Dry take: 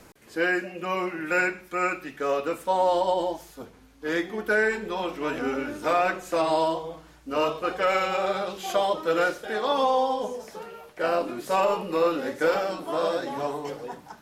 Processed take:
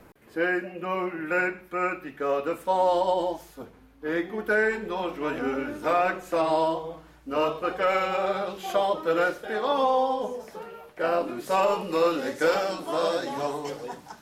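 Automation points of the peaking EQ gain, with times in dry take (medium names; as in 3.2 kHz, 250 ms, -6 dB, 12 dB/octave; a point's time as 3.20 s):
peaking EQ 6.5 kHz 1.9 oct
2.10 s -12 dB
2.80 s -3 dB
3.45 s -3 dB
4.11 s -14.5 dB
4.45 s -6 dB
11.12 s -6 dB
11.95 s +4.5 dB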